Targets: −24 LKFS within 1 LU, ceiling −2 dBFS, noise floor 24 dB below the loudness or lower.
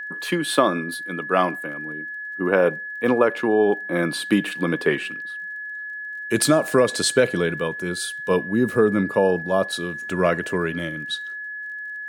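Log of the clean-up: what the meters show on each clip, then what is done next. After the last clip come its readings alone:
crackle rate 25 per second; interfering tone 1,700 Hz; level of the tone −30 dBFS; integrated loudness −22.5 LKFS; sample peak −4.0 dBFS; target loudness −24.0 LKFS
→ click removal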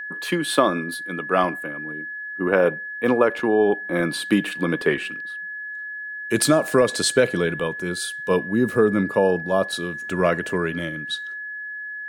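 crackle rate 0.17 per second; interfering tone 1,700 Hz; level of the tone −30 dBFS
→ notch filter 1,700 Hz, Q 30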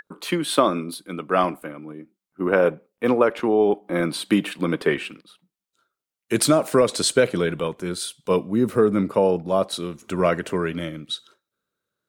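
interfering tone none found; integrated loudness −22.5 LKFS; sample peak −4.0 dBFS; target loudness −24.0 LKFS
→ level −1.5 dB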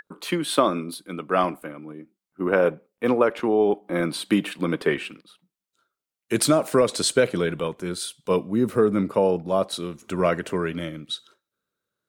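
integrated loudness −24.0 LKFS; sample peak −5.5 dBFS; background noise floor −89 dBFS

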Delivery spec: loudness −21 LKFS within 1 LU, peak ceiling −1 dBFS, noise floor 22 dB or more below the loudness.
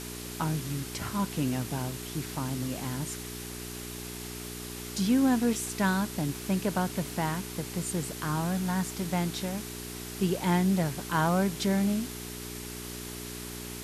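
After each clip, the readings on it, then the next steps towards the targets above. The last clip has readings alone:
mains hum 60 Hz; hum harmonics up to 420 Hz; level of the hum −40 dBFS; background noise floor −40 dBFS; target noise floor −53 dBFS; integrated loudness −31.0 LKFS; sample peak −13.5 dBFS; target loudness −21.0 LKFS
→ hum removal 60 Hz, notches 7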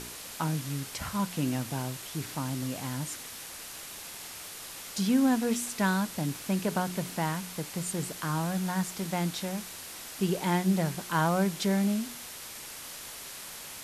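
mains hum none found; background noise floor −43 dBFS; target noise floor −54 dBFS
→ noise reduction from a noise print 11 dB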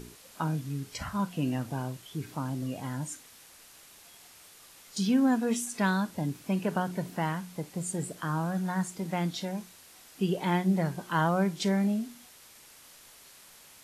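background noise floor −54 dBFS; integrated loudness −31.0 LKFS; sample peak −14.0 dBFS; target loudness −21.0 LKFS
→ level +10 dB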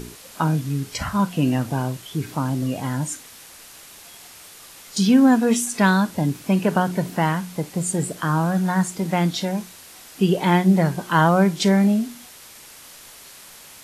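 integrated loudness −21.0 LKFS; sample peak −4.0 dBFS; background noise floor −44 dBFS

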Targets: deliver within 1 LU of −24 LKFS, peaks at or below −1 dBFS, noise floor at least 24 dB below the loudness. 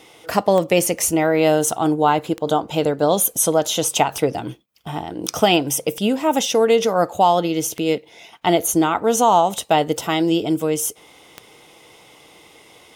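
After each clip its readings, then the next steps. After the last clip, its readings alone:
number of clicks 7; integrated loudness −18.5 LKFS; sample peak −1.5 dBFS; target loudness −24.0 LKFS
→ click removal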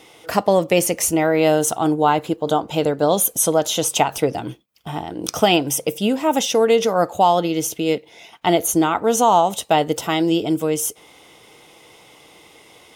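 number of clicks 0; integrated loudness −18.5 LKFS; sample peak −1.5 dBFS; target loudness −24.0 LKFS
→ level −5.5 dB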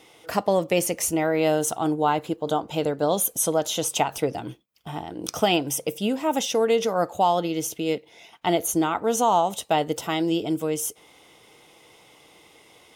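integrated loudness −24.0 LKFS; sample peak −7.0 dBFS; background noise floor −55 dBFS

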